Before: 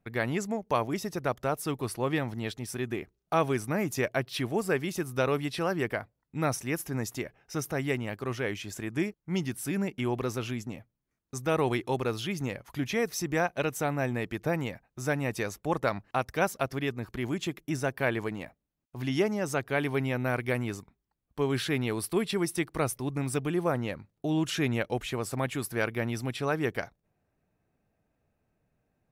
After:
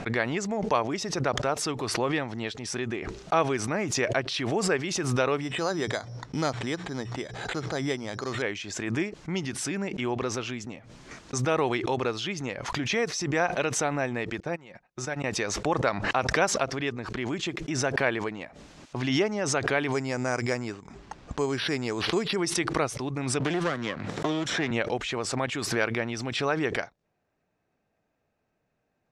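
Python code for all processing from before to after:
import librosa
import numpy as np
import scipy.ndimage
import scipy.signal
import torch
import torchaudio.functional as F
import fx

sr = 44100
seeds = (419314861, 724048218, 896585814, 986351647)

y = fx.chain(x, sr, fx.air_absorb(metres=260.0),
    fx.hum_notches(base_hz=60, count=3),
    fx.resample_bad(factor=8, down='filtered', up='hold'), at=(5.41, 8.42))
y = fx.chain(y, sr, fx.level_steps(step_db=10),
    fx.comb(ms=5.5, depth=0.36),
    fx.upward_expand(threshold_db=-53.0, expansion=2.5), at=(14.4, 15.24))
y = fx.chain(y, sr, fx.lowpass(hz=2400.0, slope=6),
    fx.resample_bad(factor=6, down='none', up='hold'), at=(19.92, 22.36))
y = fx.chain(y, sr, fx.lower_of_two(delay_ms=0.54),
    fx.highpass(hz=160.0, slope=6),
    fx.band_squash(depth_pct=100), at=(23.4, 24.71))
y = scipy.signal.sosfilt(scipy.signal.butter(4, 7000.0, 'lowpass', fs=sr, output='sos'), y)
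y = fx.low_shelf(y, sr, hz=200.0, db=-11.0)
y = fx.pre_swell(y, sr, db_per_s=42.0)
y = y * 10.0 ** (3.0 / 20.0)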